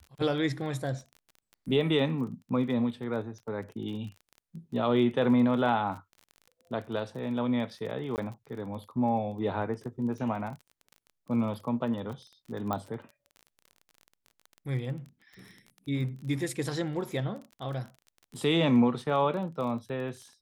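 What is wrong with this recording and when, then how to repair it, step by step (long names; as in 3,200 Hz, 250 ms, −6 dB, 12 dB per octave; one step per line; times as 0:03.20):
surface crackle 25 per second −39 dBFS
0:08.16–0:08.18: drop-out 19 ms
0:12.73: click −18 dBFS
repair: click removal
repair the gap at 0:08.16, 19 ms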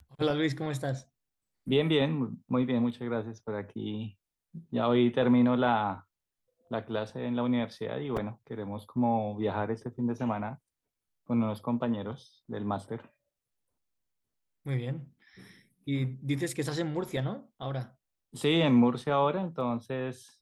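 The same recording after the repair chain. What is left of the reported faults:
none of them is left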